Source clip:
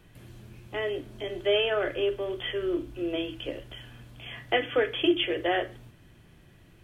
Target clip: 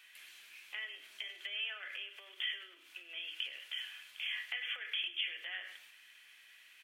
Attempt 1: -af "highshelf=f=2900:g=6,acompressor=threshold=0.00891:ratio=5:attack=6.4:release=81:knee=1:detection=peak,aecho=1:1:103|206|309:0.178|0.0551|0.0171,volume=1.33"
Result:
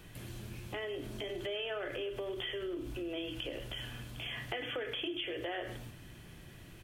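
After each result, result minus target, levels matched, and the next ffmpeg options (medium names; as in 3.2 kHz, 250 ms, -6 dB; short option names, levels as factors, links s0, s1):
8 kHz band +4.0 dB; 2 kHz band -3.0 dB
-af "acompressor=threshold=0.00891:ratio=5:attack=6.4:release=81:knee=1:detection=peak,aecho=1:1:103|206|309:0.178|0.0551|0.0171,volume=1.33"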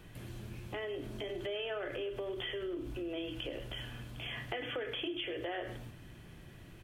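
2 kHz band -3.5 dB
-af "acompressor=threshold=0.00891:ratio=5:attack=6.4:release=81:knee=1:detection=peak,highpass=f=2200:t=q:w=1.8,aecho=1:1:103|206|309:0.178|0.0551|0.0171,volume=1.33"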